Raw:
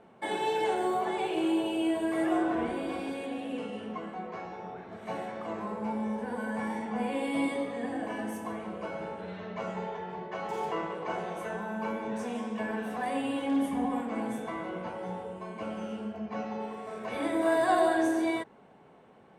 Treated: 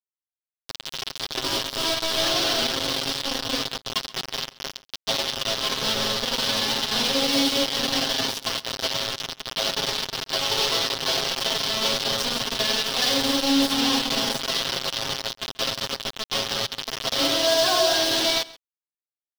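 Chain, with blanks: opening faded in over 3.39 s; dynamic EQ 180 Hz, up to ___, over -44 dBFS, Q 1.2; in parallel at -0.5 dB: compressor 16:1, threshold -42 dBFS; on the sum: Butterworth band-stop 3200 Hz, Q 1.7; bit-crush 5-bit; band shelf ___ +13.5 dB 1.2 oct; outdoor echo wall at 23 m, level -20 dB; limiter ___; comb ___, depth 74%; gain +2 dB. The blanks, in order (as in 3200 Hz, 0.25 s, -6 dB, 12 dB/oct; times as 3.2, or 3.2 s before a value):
-4 dB, 4100 Hz, -15 dBFS, 7.5 ms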